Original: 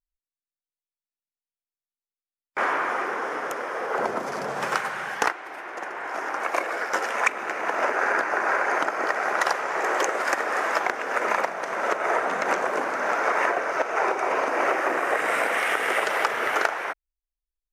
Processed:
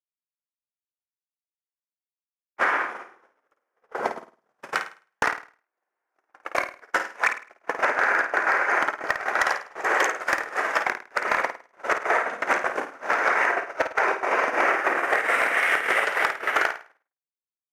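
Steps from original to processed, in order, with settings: HPF 140 Hz 12 dB/oct; gate -23 dBFS, range -56 dB; dynamic EQ 1900 Hz, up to +7 dB, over -38 dBFS, Q 1.3; compressor 16:1, threshold -23 dBFS, peak gain reduction 14 dB; hard clip -16.5 dBFS, distortion -20 dB; flutter echo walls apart 9 m, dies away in 0.37 s; gain +5 dB

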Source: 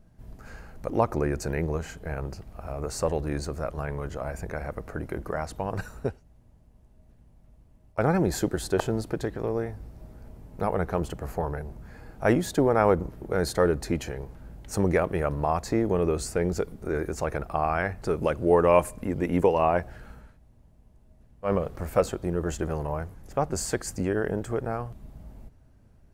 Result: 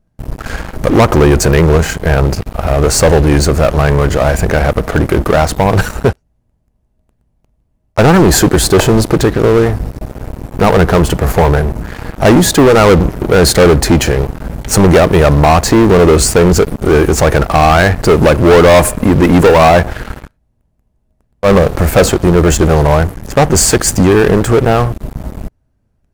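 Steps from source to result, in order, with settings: sample leveller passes 5; gain +5.5 dB

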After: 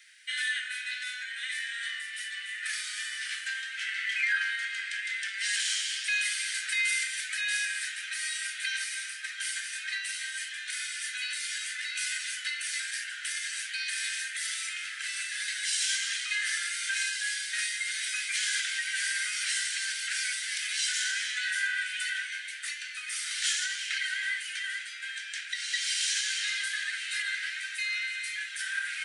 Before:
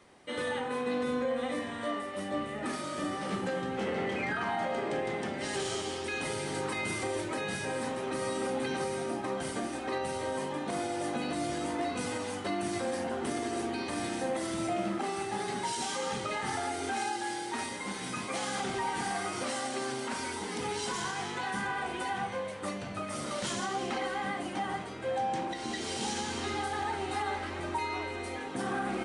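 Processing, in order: steep high-pass 1500 Hz 96 dB/oct; gain +9 dB

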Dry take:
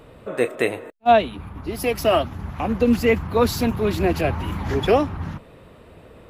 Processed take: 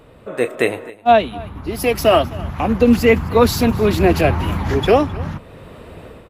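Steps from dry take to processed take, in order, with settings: AGC gain up to 9.5 dB; echo 0.26 s -21 dB

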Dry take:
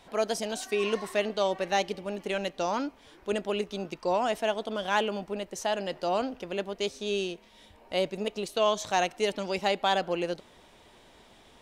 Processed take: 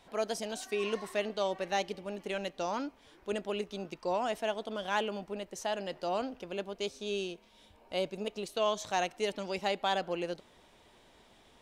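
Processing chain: 6.42–8.3 notch 1900 Hz, Q 9.7; gain -5 dB

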